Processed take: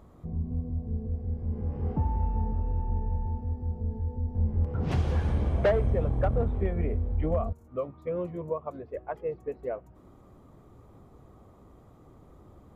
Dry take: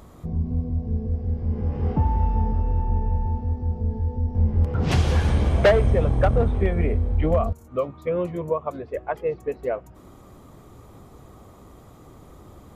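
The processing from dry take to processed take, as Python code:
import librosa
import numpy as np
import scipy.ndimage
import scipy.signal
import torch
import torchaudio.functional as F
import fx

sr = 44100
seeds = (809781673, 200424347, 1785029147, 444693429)

y = fx.high_shelf(x, sr, hz=2100.0, db=-10.5)
y = y * librosa.db_to_amplitude(-6.5)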